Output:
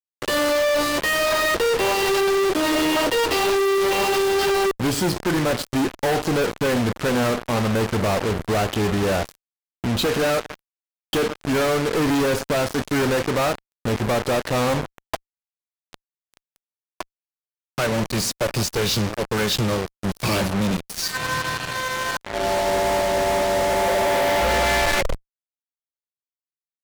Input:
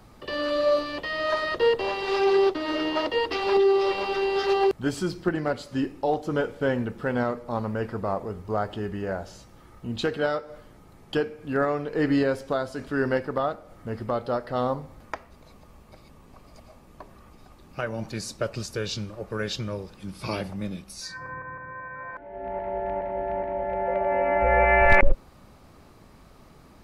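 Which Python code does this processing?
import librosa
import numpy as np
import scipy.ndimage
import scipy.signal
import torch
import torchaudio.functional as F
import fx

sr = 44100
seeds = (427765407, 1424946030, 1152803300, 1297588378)

y = fx.rattle_buzz(x, sr, strikes_db=-22.0, level_db=-23.0)
y = fx.fuzz(y, sr, gain_db=46.0, gate_db=-37.0)
y = F.gain(torch.from_numpy(y), -5.0).numpy()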